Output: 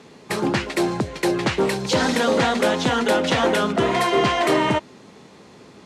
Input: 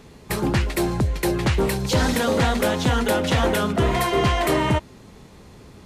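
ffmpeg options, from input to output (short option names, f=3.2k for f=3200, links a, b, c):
-af "highpass=200,lowpass=7.7k,volume=2.5dB"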